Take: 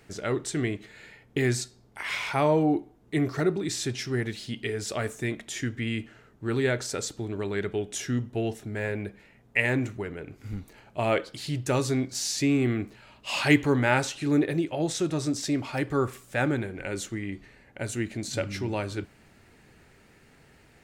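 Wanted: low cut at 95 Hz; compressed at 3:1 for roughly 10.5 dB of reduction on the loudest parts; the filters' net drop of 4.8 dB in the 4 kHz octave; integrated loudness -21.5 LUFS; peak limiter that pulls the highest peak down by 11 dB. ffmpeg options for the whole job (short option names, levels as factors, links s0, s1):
-af "highpass=95,equalizer=f=4000:t=o:g=-6.5,acompressor=threshold=0.0355:ratio=3,volume=5.01,alimiter=limit=0.316:level=0:latency=1"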